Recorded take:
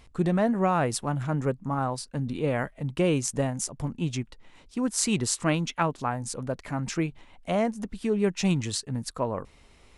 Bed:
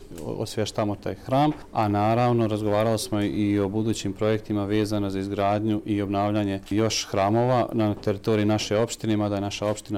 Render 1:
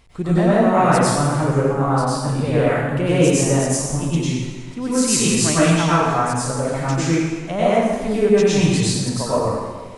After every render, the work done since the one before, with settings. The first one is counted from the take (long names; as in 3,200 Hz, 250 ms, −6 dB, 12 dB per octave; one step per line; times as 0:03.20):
dense smooth reverb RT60 1.4 s, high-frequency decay 0.85×, pre-delay 85 ms, DRR −10 dB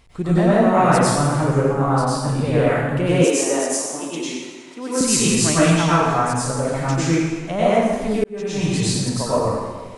0:03.24–0:05.01: high-pass filter 290 Hz 24 dB per octave
0:08.24–0:08.96: fade in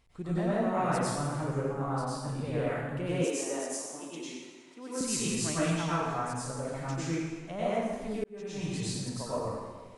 level −14 dB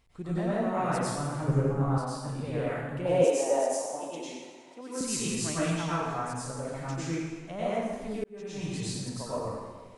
0:01.48–0:01.98: low-shelf EQ 260 Hz +11 dB
0:03.05–0:04.81: flat-topped bell 680 Hz +12 dB 1.1 octaves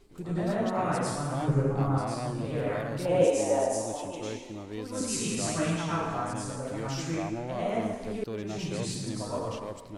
mix in bed −15 dB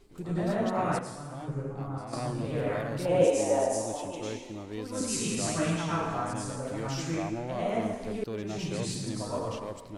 0:00.99–0:02.13: clip gain −9 dB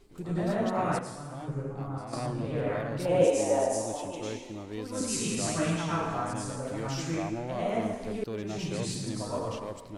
0:02.26–0:03.00: high-shelf EQ 6,200 Hz −10 dB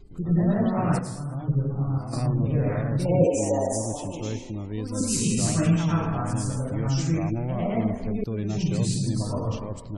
gate on every frequency bin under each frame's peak −30 dB strong
bass and treble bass +13 dB, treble +6 dB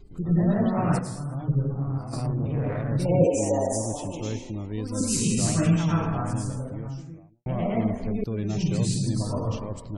0:01.74–0:02.89: tube saturation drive 20 dB, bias 0.4
0:06.04–0:07.46: fade out and dull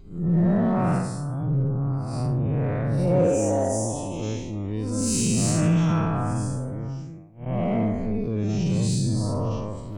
spectrum smeared in time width 142 ms
in parallel at −5 dB: hard clipping −23.5 dBFS, distortion −12 dB